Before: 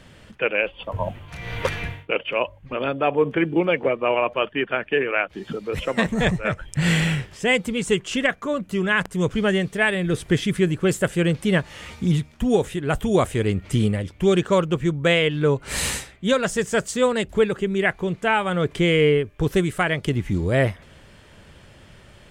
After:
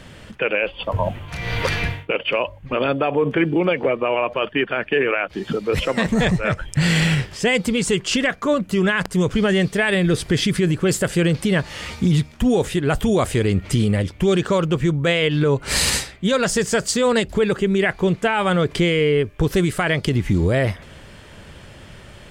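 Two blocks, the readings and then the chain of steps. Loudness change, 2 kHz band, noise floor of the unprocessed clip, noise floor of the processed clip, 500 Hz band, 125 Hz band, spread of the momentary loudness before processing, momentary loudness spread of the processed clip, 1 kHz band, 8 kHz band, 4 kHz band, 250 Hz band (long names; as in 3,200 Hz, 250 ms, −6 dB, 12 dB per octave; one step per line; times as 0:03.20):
+2.5 dB, +1.5 dB, −49 dBFS, −43 dBFS, +1.5 dB, +3.5 dB, 7 LU, 5 LU, +1.5 dB, +6.0 dB, +4.0 dB, +3.0 dB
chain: brickwall limiter −16 dBFS, peak gain reduction 9 dB
dynamic equaliser 4,700 Hz, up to +8 dB, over −55 dBFS, Q 3.2
level +6.5 dB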